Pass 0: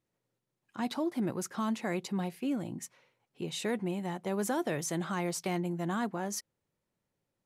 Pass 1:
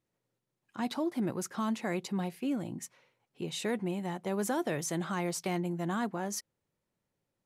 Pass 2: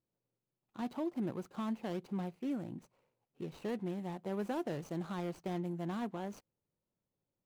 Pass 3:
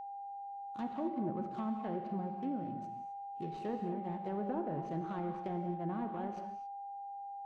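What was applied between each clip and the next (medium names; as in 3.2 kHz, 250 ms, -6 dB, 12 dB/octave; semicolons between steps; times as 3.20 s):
no audible change
median filter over 25 samples; trim -4.5 dB
low-pass that closes with the level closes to 1.1 kHz, closed at -33 dBFS; gated-style reverb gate 290 ms flat, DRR 4.5 dB; whistle 800 Hz -41 dBFS; trim -1 dB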